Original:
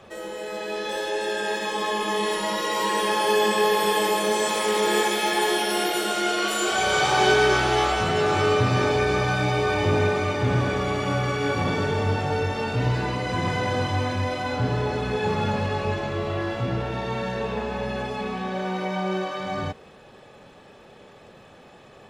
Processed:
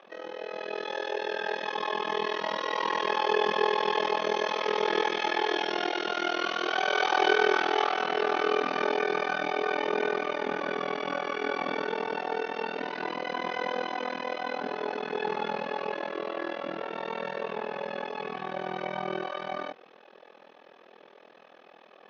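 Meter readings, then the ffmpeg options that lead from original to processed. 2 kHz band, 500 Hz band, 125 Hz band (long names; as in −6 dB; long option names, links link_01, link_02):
−4.5 dB, −5.5 dB, −25.0 dB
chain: -filter_complex "[0:a]acrossover=split=310 4300:gain=0.251 1 0.224[link_01][link_02][link_03];[link_01][link_02][link_03]amix=inputs=3:normalize=0,afftfilt=real='re*between(b*sr/4096,180,6700)':imag='im*between(b*sr/4096,180,6700)':win_size=4096:overlap=0.75,tremolo=f=41:d=0.947"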